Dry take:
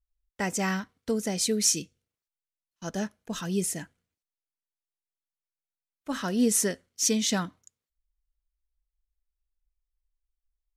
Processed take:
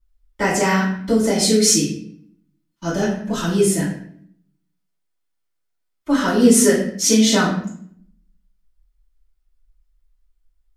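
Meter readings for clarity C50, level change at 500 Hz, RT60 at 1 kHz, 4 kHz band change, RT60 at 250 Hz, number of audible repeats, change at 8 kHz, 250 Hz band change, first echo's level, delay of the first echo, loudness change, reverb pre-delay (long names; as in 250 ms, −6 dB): 4.0 dB, +13.5 dB, 0.55 s, +10.0 dB, 0.95 s, no echo audible, +8.0 dB, +12.5 dB, no echo audible, no echo audible, +10.5 dB, 3 ms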